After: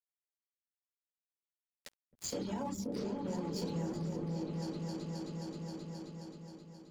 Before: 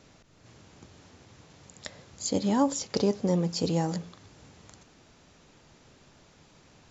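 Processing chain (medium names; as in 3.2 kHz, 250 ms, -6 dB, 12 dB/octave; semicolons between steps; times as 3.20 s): rotary cabinet horn 0.75 Hz; reverberation RT60 0.40 s, pre-delay 6 ms, DRR -6 dB; crossover distortion -31.5 dBFS; reverb removal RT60 0.61 s; peak limiter -14.5 dBFS, peak gain reduction 10.5 dB; delay with an opening low-pass 265 ms, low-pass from 200 Hz, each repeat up 2 oct, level 0 dB; compression 3:1, threshold -37 dBFS, peak gain reduction 15.5 dB; trim -2.5 dB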